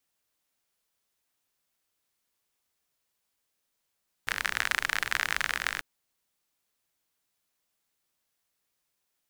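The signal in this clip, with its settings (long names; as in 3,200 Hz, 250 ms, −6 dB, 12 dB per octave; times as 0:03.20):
rain-like ticks over hiss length 1.54 s, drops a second 45, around 1,700 Hz, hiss −16.5 dB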